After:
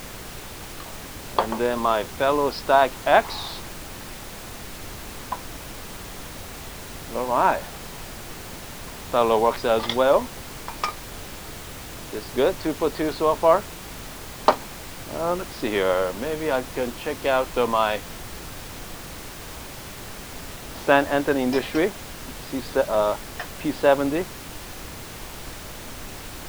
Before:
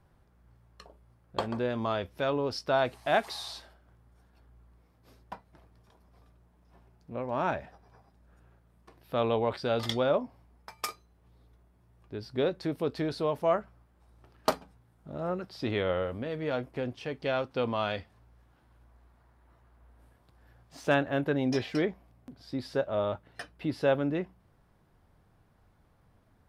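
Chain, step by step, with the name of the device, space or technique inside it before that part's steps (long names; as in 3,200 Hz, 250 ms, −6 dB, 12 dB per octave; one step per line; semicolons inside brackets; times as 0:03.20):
horn gramophone (band-pass filter 260–4,300 Hz; parametric band 970 Hz +7 dB 0.44 octaves; tape wow and flutter; pink noise bed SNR 11 dB)
level +8 dB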